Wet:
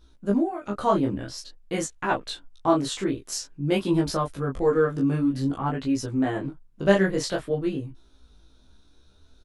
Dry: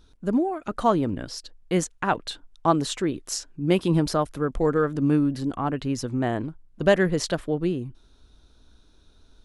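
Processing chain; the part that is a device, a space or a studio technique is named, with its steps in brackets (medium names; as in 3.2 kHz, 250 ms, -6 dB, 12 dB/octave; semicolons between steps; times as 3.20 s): double-tracked vocal (doubling 15 ms -2 dB; chorus 0.5 Hz, delay 18 ms, depth 7.8 ms)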